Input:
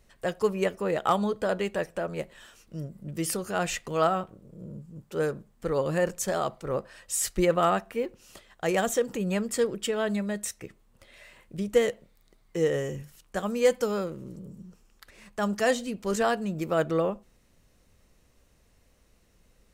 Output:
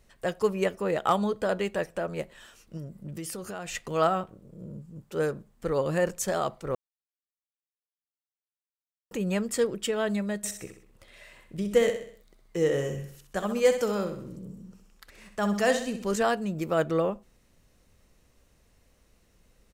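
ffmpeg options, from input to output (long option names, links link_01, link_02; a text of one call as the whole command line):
ffmpeg -i in.wav -filter_complex "[0:a]asettb=1/sr,asplit=3[link_01][link_02][link_03];[link_01]atrim=end=2.774[link_04];[link_02]atrim=start=2.77:end=3.75,asetpts=PTS-STARTPTS,afade=type=in:duration=0.004:curve=qsin,afade=type=out:start_time=0.976:duration=0.004:curve=qsin,acompressor=threshold=-33dB:ratio=6:attack=3.2:release=140:knee=1:detection=peak[link_05];[link_03]atrim=start=3.746[link_06];[link_04][link_05]acrossfade=duration=0.004:curve1=hsin:curve2=qsin[link_07];[link_07][link_06]acrossfade=duration=0.004:curve1=qsin:curve2=hsin,asplit=3[link_08][link_09][link_10];[link_08]afade=type=out:start_time=10.43:duration=0.02[link_11];[link_09]aecho=1:1:64|128|192|256|320:0.355|0.163|0.0751|0.0345|0.0159,afade=type=in:start_time=10.43:duration=0.02,afade=type=out:start_time=16.06:duration=0.02[link_12];[link_10]afade=type=in:start_time=16.06:duration=0.02[link_13];[link_11][link_12][link_13]amix=inputs=3:normalize=0,asplit=3[link_14][link_15][link_16];[link_14]atrim=end=6.75,asetpts=PTS-STARTPTS,afade=type=out:start_time=6.746:duration=0.004:curve=hsin[link_17];[link_15]atrim=start=6.75:end=9.11,asetpts=PTS-STARTPTS,volume=0[link_18];[link_16]atrim=start=9.11,asetpts=PTS-STARTPTS,afade=type=in:duration=0.004:curve=hsin[link_19];[link_17][link_18][link_19]concat=n=3:v=0:a=1" out.wav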